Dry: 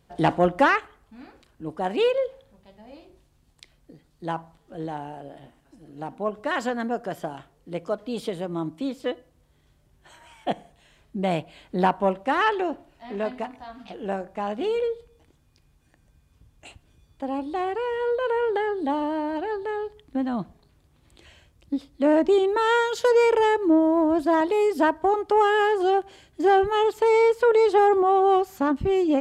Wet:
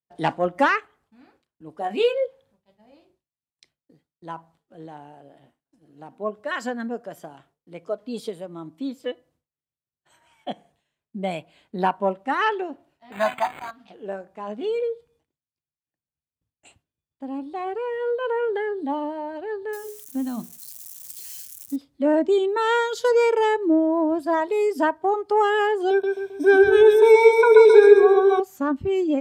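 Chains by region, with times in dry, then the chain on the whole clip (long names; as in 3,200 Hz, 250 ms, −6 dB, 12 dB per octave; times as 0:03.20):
0:01.78–0:02.25: double-tracking delay 19 ms −6 dB + one half of a high-frequency compander encoder only
0:13.12–0:13.71: spike at every zero crossing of −32.5 dBFS + drawn EQ curve 200 Hz 0 dB, 420 Hz −10 dB, 770 Hz +13 dB + linearly interpolated sample-rate reduction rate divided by 8×
0:19.73–0:21.76: spike at every zero crossing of −34 dBFS + high-shelf EQ 3,900 Hz +7.5 dB + mains-hum notches 60/120/180/240/300/360/420/480 Hz
0:25.90–0:28.40: EQ curve with evenly spaced ripples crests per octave 1.6, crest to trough 18 dB + repeating echo 133 ms, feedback 50%, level −4 dB
whole clip: noise reduction from a noise print of the clip's start 8 dB; high-pass filter 100 Hz 12 dB per octave; downward expander −56 dBFS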